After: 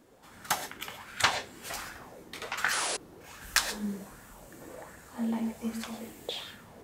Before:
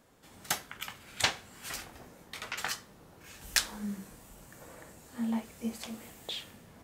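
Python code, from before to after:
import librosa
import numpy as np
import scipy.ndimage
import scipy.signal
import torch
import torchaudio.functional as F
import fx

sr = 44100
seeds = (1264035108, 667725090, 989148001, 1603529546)

y = fx.rev_gated(x, sr, seeds[0], gate_ms=150, shape='rising', drr_db=8.0)
y = fx.spec_paint(y, sr, seeds[1], shape='noise', start_s=2.72, length_s=0.25, low_hz=270.0, high_hz=11000.0, level_db=-33.0)
y = fx.bell_lfo(y, sr, hz=1.3, low_hz=310.0, high_hz=1600.0, db=11)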